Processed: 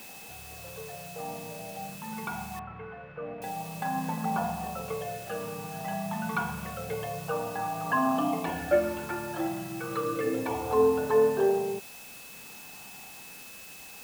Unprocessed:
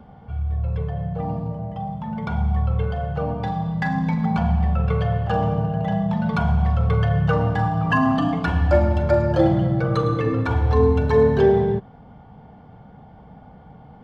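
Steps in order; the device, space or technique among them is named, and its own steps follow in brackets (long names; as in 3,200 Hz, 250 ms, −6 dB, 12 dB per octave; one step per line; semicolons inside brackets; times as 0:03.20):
shortwave radio (band-pass filter 340–2,600 Hz; amplitude tremolo 0.47 Hz, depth 49%; auto-filter notch sine 0.29 Hz 500–2,500 Hz; steady tone 2,600 Hz −48 dBFS; white noise bed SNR 16 dB)
0:02.59–0:03.42: low-pass filter 2,200 Hz 24 dB per octave
level −1.5 dB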